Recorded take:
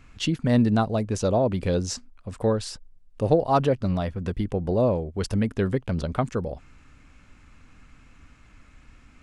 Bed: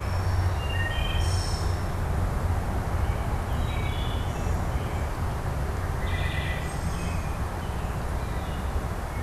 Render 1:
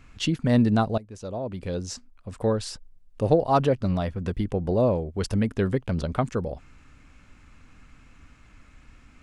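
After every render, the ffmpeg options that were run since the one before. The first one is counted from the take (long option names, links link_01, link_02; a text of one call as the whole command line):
ffmpeg -i in.wav -filter_complex "[0:a]asplit=2[link_01][link_02];[link_01]atrim=end=0.98,asetpts=PTS-STARTPTS,afade=type=out:start_time=0.976:duration=0.004:curve=hsin:silence=0.105925[link_03];[link_02]atrim=start=0.98,asetpts=PTS-STARTPTS,afade=type=in:duration=1.72:silence=0.105925[link_04];[link_03][link_04]concat=n=2:v=0:a=1" out.wav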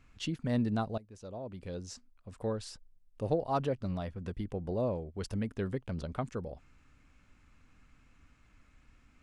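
ffmpeg -i in.wav -af "volume=-10.5dB" out.wav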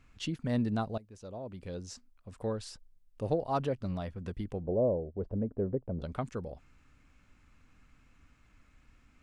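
ffmpeg -i in.wav -filter_complex "[0:a]asettb=1/sr,asplit=3[link_01][link_02][link_03];[link_01]atrim=end=4.634[link_04];[link_02]atrim=start=4.63:end=6.02,asetpts=PTS-STARTPTS,afade=type=in:duration=0.004:curve=qsin,afade=type=out:start_time=1.386:duration=0.004:curve=qsin,lowpass=frequency=570:width_type=q:width=1.9[link_05];[link_03]atrim=start=6.016[link_06];[link_04][link_05]acrossfade=duration=0.004:curve1=hsin:curve2=qsin[link_07];[link_07][link_06]acrossfade=duration=0.004:curve1=qsin:curve2=hsin" out.wav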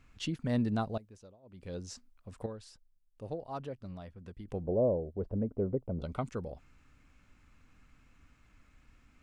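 ffmpeg -i in.wav -filter_complex "[0:a]asettb=1/sr,asplit=3[link_01][link_02][link_03];[link_01]atrim=end=5.444[link_04];[link_02]atrim=start=5.44:end=6.29,asetpts=PTS-STARTPTS,afade=type=in:duration=0.004:curve=qsin,afade=type=out:start_time=0.846:duration=0.004:curve=qsin,asuperstop=centerf=1700:order=8:qfactor=5.7[link_05];[link_03]atrim=start=6.286[link_06];[link_04][link_05]acrossfade=duration=0.004:curve1=hsin:curve2=qsin[link_07];[link_07][link_06]acrossfade=duration=0.004:curve1=qsin:curve2=hsin,asplit=5[link_08][link_09][link_10][link_11][link_12];[link_08]atrim=end=1.37,asetpts=PTS-STARTPTS,afade=type=out:start_time=1.04:duration=0.33:silence=0.0794328[link_13];[link_09]atrim=start=1.37:end=1.42,asetpts=PTS-STARTPTS,volume=-22dB[link_14];[link_10]atrim=start=1.42:end=2.462,asetpts=PTS-STARTPTS,afade=type=in:duration=0.33:silence=0.0794328[link_15];[link_11]atrim=start=2.458:end=4.482,asetpts=PTS-STARTPTS,volume=-9dB[link_16];[link_12]atrim=start=4.478[link_17];[link_13][link_14][link_15]concat=n=3:v=0:a=1[link_18];[link_18][link_16]acrossfade=duration=0.004:curve1=hsin:curve2=hsin[link_19];[link_19][link_17]acrossfade=duration=0.004:curve1=hsin:curve2=hsin" out.wav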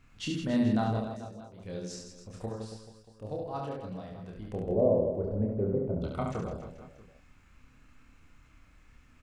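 ffmpeg -i in.wav -filter_complex "[0:a]asplit=2[link_01][link_02];[link_02]adelay=28,volume=-3dB[link_03];[link_01][link_03]amix=inputs=2:normalize=0,aecho=1:1:70|161|279.3|433.1|633:0.631|0.398|0.251|0.158|0.1" out.wav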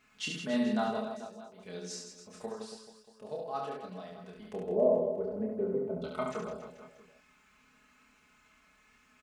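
ffmpeg -i in.wav -af "highpass=frequency=540:poles=1,aecho=1:1:4.7:0.8" out.wav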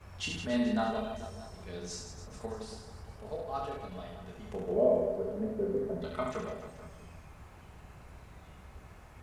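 ffmpeg -i in.wav -i bed.wav -filter_complex "[1:a]volume=-22dB[link_01];[0:a][link_01]amix=inputs=2:normalize=0" out.wav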